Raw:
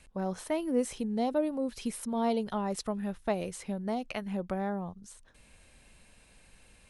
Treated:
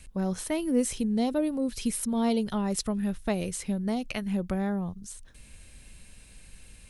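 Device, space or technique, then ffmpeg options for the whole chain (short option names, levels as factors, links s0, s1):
smiley-face EQ: -af "lowshelf=f=130:g=6.5,equalizer=f=790:t=o:w=1.8:g=-7,highshelf=f=6700:g=6,volume=1.78"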